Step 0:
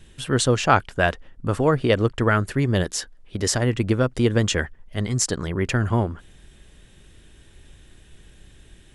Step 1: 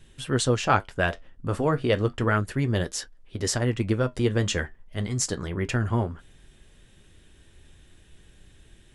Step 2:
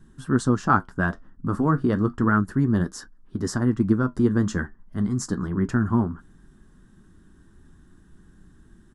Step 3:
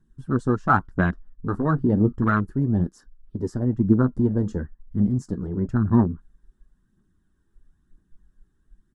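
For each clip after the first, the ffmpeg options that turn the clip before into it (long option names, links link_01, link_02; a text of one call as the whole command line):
ffmpeg -i in.wav -af "flanger=delay=7.4:depth=4.3:regen=-62:speed=0.32:shape=sinusoidal" out.wav
ffmpeg -i in.wav -af "firequalizer=gain_entry='entry(120,0);entry(190,10);entry(320,5);entry(520,-9);entry(1100,5);entry(1600,1);entry(2300,-19);entry(5000,-7)':delay=0.05:min_phase=1" out.wav
ffmpeg -i in.wav -af "afwtdn=0.0398,aphaser=in_gain=1:out_gain=1:delay=2.5:decay=0.38:speed=1:type=triangular" out.wav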